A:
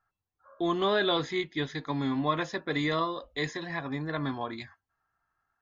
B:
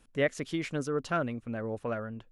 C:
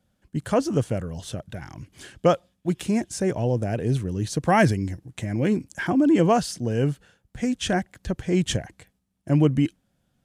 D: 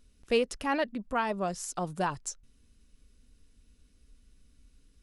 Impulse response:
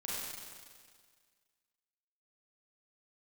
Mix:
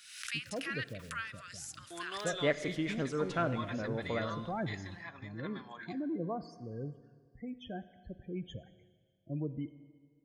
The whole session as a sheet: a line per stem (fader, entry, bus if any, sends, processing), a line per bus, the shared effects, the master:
−16.0 dB, 1.30 s, send −20 dB, tilt shelving filter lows −8.5 dB, about 730 Hz; notch filter 3,800 Hz, Q 13
−3.5 dB, 2.25 s, send −13 dB, pitch modulation by a square or saw wave saw up 3.9 Hz, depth 100 cents
−19.0 dB, 0.00 s, send −15 dB, spectral peaks only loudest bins 16
−3.5 dB, 0.00 s, send −22 dB, Butterworth high-pass 1,400 Hz 48 dB per octave; background raised ahead of every attack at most 62 dB per second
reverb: on, RT60 1.8 s, pre-delay 32 ms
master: high-shelf EQ 6,500 Hz −6.5 dB

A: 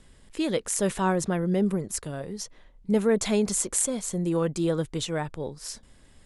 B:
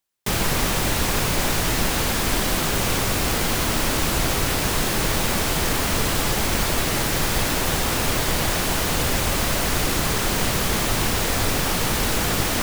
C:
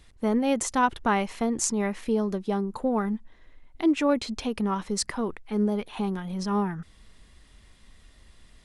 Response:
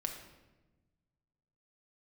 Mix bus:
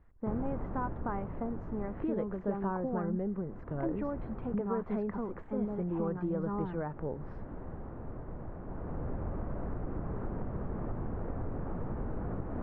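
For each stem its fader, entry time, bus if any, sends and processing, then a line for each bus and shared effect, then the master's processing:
+1.5 dB, 1.65 s, bus A, no send, no processing
−15.0 dB, 0.00 s, bus A, no send, tilt shelving filter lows +9.5 dB, about 1,100 Hz; automatic ducking −11 dB, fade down 1.45 s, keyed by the third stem
−6.5 dB, 0.00 s, no bus, no send, downward compressor, threshold −26 dBFS, peak gain reduction 9 dB
bus A: 0.0 dB, downward compressor 6 to 1, threshold −32 dBFS, peak gain reduction 15 dB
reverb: not used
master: low-pass filter 1,500 Hz 24 dB per octave

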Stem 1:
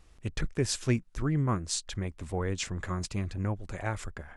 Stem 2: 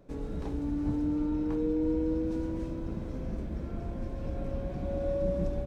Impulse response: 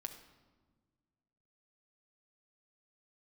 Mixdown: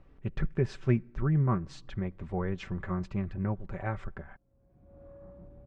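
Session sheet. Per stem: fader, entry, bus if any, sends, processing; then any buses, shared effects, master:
−2.5 dB, 0.00 s, send −16.5 dB, comb filter 5.2 ms, depth 52%
−19.0 dB, 0.00 s, no send, upward compression, threshold −36 dBFS; soft clipping −26 dBFS, distortion −16 dB; automatic ducking −23 dB, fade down 0.35 s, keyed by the first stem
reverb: on, RT60 1.5 s, pre-delay 6 ms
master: low-pass filter 1,900 Hz 12 dB per octave; parametric band 110 Hz +6.5 dB 0.88 octaves

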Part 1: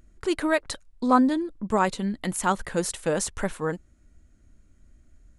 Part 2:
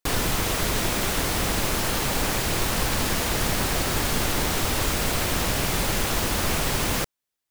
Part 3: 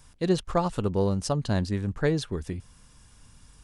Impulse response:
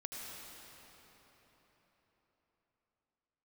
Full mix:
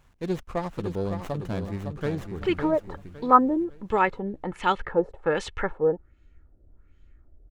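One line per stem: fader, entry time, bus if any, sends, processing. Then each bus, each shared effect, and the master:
−1.5 dB, 2.20 s, no send, no echo send, comb filter 2.3 ms, depth 47%; auto-filter low-pass sine 1.3 Hz 570–3,300 Hz
muted
−4.5 dB, 0.00 s, no send, echo send −7 dB, windowed peak hold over 9 samples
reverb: not used
echo: repeating echo 558 ms, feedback 34%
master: no processing

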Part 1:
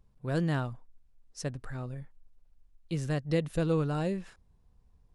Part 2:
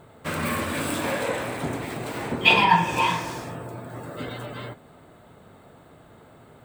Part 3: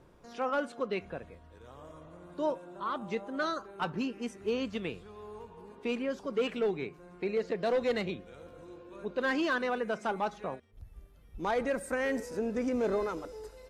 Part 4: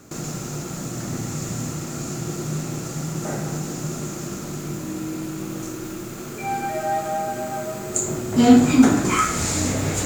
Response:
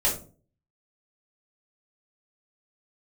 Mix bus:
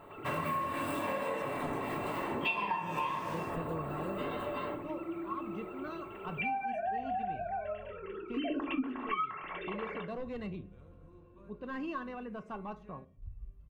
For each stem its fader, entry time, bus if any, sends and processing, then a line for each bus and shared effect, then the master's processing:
−9.5 dB, 0.00 s, no send, no processing
−7.0 dB, 0.00 s, send −7 dB, high-pass filter 84 Hz; bass and treble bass −4 dB, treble −1 dB
−13.0 dB, 2.45 s, send −22 dB, bass and treble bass +15 dB, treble −1 dB
−2.0 dB, 0.00 s, send −13.5 dB, three sine waves on the formant tracks; parametric band 400 Hz −13 dB 2.6 octaves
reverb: on, RT60 0.40 s, pre-delay 3 ms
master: parametric band 6,500 Hz −9 dB 2.1 octaves; hollow resonant body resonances 1,100/2,700 Hz, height 17 dB, ringing for 85 ms; downward compressor 6 to 1, threshold −32 dBFS, peak gain reduction 19 dB

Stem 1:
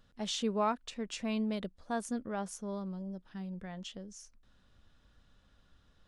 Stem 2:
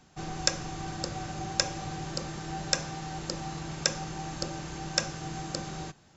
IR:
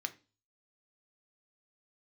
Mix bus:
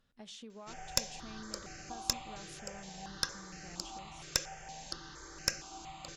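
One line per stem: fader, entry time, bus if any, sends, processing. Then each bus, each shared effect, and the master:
−7.5 dB, 0.00 s, send −4.5 dB, downward compressor 4 to 1, threshold −40 dBFS, peak gain reduction 12 dB
+0.5 dB, 0.50 s, no send, parametric band 140 Hz −13.5 dB 3 octaves; step-sequenced phaser 4.3 Hz 230–3,500 Hz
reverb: on, RT60 0.30 s, pre-delay 3 ms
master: tube saturation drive 12 dB, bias 0.65

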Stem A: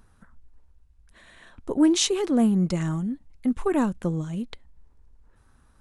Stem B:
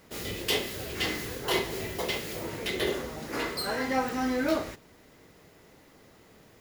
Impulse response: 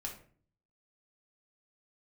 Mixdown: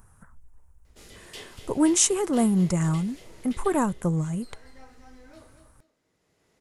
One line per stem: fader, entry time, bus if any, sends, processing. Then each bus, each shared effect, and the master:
+0.5 dB, 0.00 s, no send, no echo send, octave-band graphic EQ 125/250/1,000/4,000/8,000 Hz +7/−5/+4/−12/+6 dB
0:03.44 −4 dB → 0:04.09 −12.5 dB, 0.85 s, no send, echo send −21 dB, low-pass filter 10,000 Hz 24 dB per octave; automatic ducking −12 dB, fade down 1.25 s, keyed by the first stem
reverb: not used
echo: repeating echo 238 ms, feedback 26%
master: high-shelf EQ 7,000 Hz +9.5 dB

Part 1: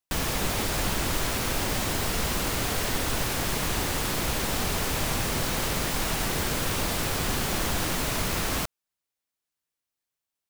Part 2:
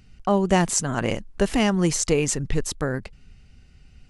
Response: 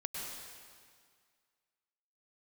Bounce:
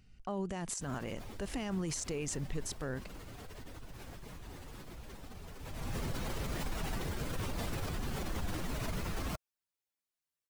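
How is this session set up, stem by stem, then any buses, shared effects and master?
0:05.56 −19.5 dB → 0:05.99 −6.5 dB, 0.70 s, no send, expanding power law on the bin magnitudes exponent 1.6
−10.0 dB, 0.00 s, no send, brickwall limiter −12.5 dBFS, peak gain reduction 8 dB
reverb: not used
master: brickwall limiter −28 dBFS, peak gain reduction 6.5 dB

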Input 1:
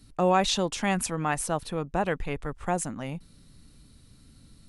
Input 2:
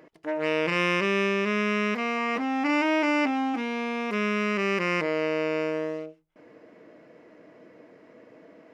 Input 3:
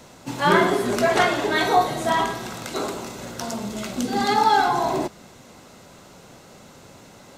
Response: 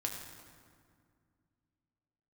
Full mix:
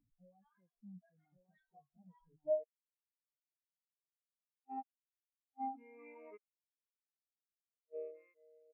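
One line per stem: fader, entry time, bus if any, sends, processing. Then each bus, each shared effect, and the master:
−8.5 dB, 0.00 s, bus A, no send, echo send −17 dB, tilt shelving filter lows +4 dB; multiband upward and downward compressor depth 70%
−9.0 dB, 2.20 s, no bus, no send, echo send −8 dB, bass and treble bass −14 dB, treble +11 dB
−4.5 dB, 0.00 s, bus A, no send, no echo send, guitar amp tone stack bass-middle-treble 10-0-10
bus A: 0.0 dB, soft clipping −32 dBFS, distortion −9 dB; brickwall limiter −40.5 dBFS, peak gain reduction 8.5 dB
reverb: not used
echo: single-tap delay 1,134 ms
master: gate with flip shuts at −26 dBFS, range −26 dB; every bin expanded away from the loudest bin 4 to 1

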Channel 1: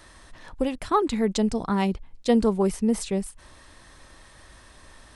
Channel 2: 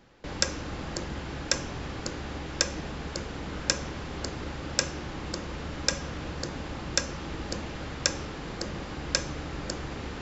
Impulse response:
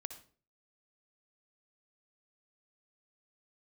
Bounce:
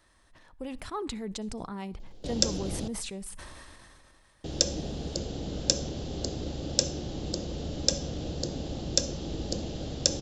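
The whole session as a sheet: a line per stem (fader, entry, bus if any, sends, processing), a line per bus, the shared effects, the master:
−16.5 dB, 0.00 s, send −9.5 dB, level that may fall only so fast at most 22 dB per second
−1.0 dB, 2.00 s, muted 0:02.88–0:04.44, send −4 dB, flat-topped bell 1,500 Hz −16 dB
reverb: on, RT60 0.40 s, pre-delay 55 ms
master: no processing

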